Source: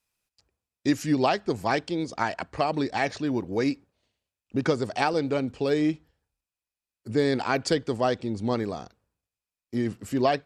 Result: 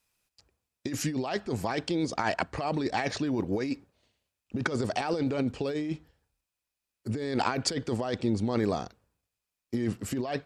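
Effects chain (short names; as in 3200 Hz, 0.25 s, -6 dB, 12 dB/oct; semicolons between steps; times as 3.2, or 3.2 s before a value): negative-ratio compressor -29 dBFS, ratio -1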